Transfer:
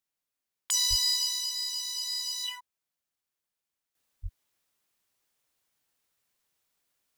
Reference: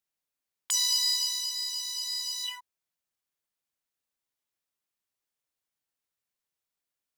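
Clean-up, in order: de-plosive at 0.89/4.22; gain 0 dB, from 3.95 s -10 dB

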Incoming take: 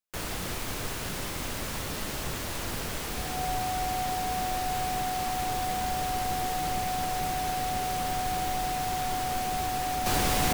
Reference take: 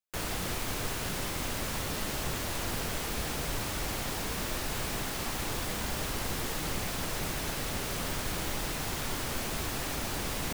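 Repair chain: notch 740 Hz, Q 30; gain correction -7.5 dB, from 10.06

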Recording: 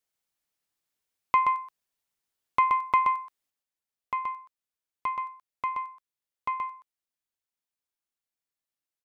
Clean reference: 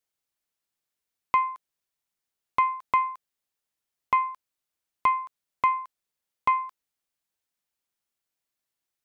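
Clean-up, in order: inverse comb 0.126 s -5.5 dB; gain 0 dB, from 3.5 s +8 dB

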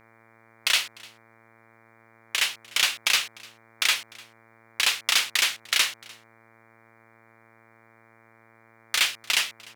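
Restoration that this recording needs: de-hum 113.4 Hz, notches 21; inverse comb 0.299 s -24 dB

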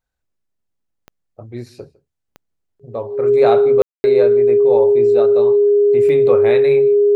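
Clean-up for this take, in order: de-click; notch 410 Hz, Q 30; room tone fill 3.82–4.04; inverse comb 0.154 s -23 dB

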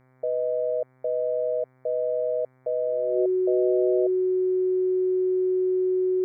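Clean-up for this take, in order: de-hum 128.9 Hz, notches 18; notch 370 Hz, Q 30

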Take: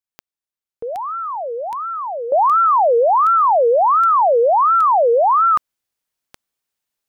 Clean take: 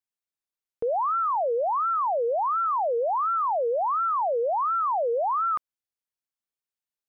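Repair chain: de-click; gain correction -11.5 dB, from 2.32

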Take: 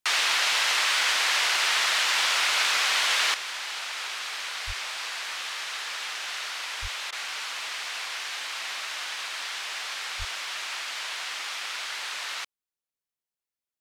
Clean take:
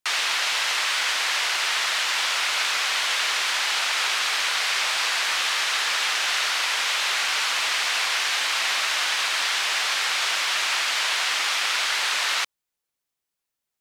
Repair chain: 4.66–4.78 HPF 140 Hz 24 dB/oct; 6.81–6.93 HPF 140 Hz 24 dB/oct; 10.18–10.3 HPF 140 Hz 24 dB/oct; interpolate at 7.11, 13 ms; 3.34 gain correction +10 dB

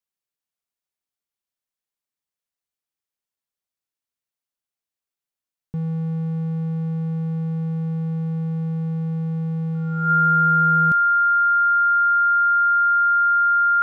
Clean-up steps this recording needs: notch 1400 Hz, Q 30

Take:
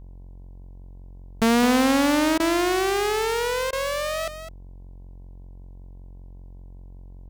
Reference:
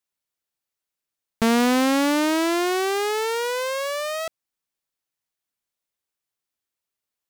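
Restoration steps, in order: de-hum 45.2 Hz, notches 23; interpolate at 2.38/3.71, 17 ms; inverse comb 0.208 s -10.5 dB

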